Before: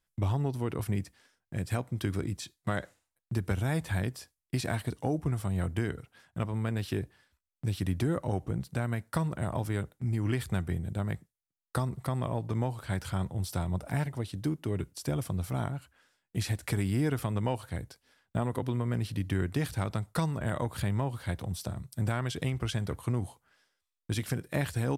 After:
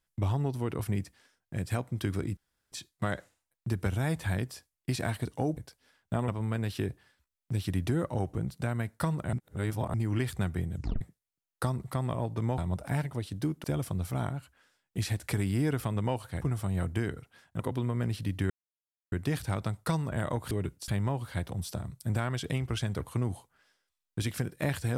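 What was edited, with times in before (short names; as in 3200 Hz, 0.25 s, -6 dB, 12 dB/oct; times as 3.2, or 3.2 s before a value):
2.37 insert room tone 0.35 s
5.22–6.41 swap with 17.8–18.51
9.46–10.07 reverse
10.87 tape stop 0.27 s
12.71–13.6 cut
14.66–15.03 move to 20.8
19.41 insert silence 0.62 s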